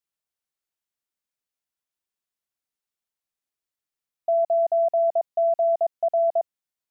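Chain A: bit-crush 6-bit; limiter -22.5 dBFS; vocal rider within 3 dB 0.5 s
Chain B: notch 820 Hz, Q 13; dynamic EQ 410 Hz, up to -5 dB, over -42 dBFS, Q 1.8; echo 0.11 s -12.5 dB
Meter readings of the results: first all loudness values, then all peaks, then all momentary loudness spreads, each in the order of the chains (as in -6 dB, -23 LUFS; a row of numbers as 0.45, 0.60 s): -28.0, -24.5 LUFS; -22.0, -18.0 dBFS; 6, 6 LU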